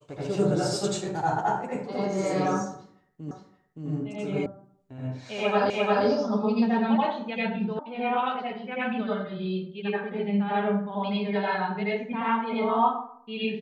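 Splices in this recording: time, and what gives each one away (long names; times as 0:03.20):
0:03.31: the same again, the last 0.57 s
0:04.46: cut off before it has died away
0:05.70: the same again, the last 0.35 s
0:07.79: cut off before it has died away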